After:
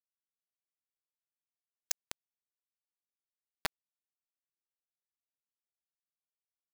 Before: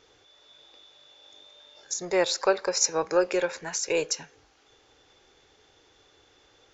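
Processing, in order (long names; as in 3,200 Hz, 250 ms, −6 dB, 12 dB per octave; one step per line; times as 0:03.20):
gate with flip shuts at −27 dBFS, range −26 dB
bit reduction 5 bits
level +8 dB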